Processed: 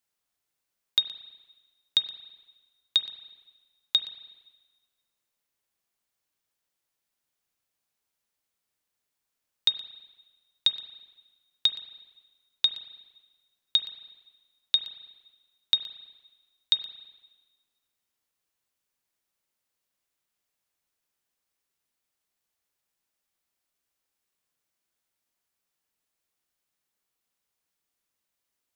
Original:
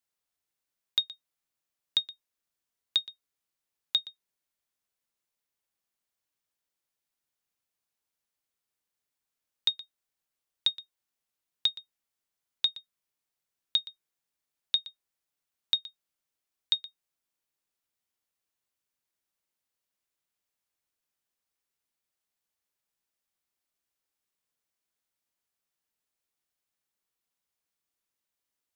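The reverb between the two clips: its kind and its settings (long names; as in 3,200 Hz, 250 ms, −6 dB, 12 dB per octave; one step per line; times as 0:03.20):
spring reverb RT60 1.3 s, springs 33/46 ms, chirp 70 ms, DRR 10 dB
level +3.5 dB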